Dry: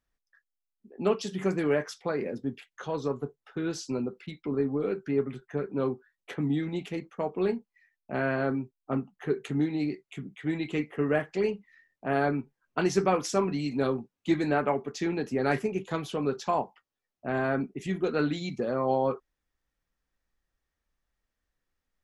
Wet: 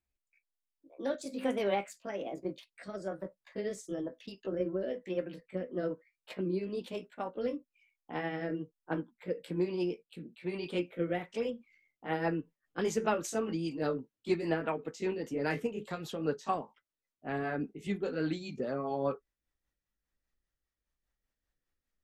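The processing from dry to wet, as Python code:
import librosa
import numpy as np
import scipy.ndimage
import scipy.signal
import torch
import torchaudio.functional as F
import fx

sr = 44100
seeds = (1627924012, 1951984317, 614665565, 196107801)

y = fx.pitch_glide(x, sr, semitones=5.5, runs='ending unshifted')
y = fx.rotary_switch(y, sr, hz=1.1, then_hz=5.0, switch_at_s=10.97)
y = F.gain(torch.from_numpy(y), -2.5).numpy()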